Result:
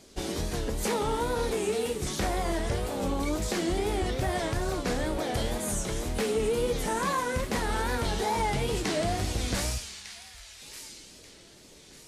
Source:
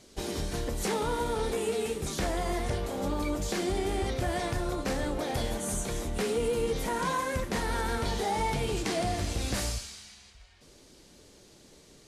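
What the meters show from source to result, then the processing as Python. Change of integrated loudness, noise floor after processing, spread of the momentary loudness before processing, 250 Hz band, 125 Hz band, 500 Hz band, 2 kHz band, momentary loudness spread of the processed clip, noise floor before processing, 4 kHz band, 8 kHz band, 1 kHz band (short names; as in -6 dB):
+1.5 dB, -52 dBFS, 4 LU, +1.5 dB, +1.5 dB, +1.5 dB, +2.0 dB, 14 LU, -56 dBFS, +2.0 dB, +2.0 dB, +1.5 dB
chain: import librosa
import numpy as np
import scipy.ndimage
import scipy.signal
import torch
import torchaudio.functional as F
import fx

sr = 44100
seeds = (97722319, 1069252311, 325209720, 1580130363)

y = fx.echo_wet_highpass(x, sr, ms=1192, feedback_pct=32, hz=2100.0, wet_db=-9.5)
y = fx.wow_flutter(y, sr, seeds[0], rate_hz=2.1, depth_cents=120.0)
y = y * librosa.db_to_amplitude(1.5)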